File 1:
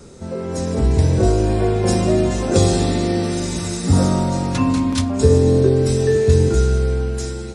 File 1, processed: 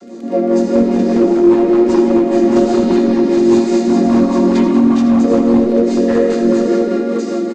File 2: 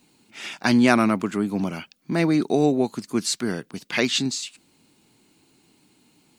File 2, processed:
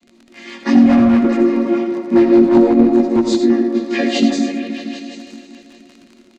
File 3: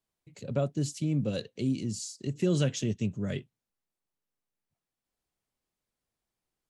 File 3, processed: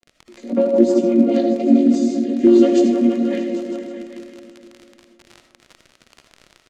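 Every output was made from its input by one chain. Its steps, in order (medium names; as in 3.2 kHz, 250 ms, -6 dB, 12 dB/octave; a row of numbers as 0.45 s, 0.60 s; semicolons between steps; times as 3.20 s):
vocoder on a held chord minor triad, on A#3; high-pass 160 Hz 24 dB/octave; treble shelf 6.2 kHz +8 dB; comb 5.3 ms, depth 48%; compression 10:1, threshold -19 dBFS; chorus 1 Hz, delay 15.5 ms, depth 5.2 ms; delay with an opening low-pass 158 ms, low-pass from 750 Hz, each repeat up 1 oct, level -3 dB; overload inside the chain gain 20.5 dB; crackle 49 per s -41 dBFS; distance through air 60 m; rotary cabinet horn 5 Hz; algorithmic reverb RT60 0.41 s, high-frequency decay 0.55×, pre-delay 40 ms, DRR 6.5 dB; peak normalisation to -1.5 dBFS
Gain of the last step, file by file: +15.5 dB, +16.5 dB, +18.5 dB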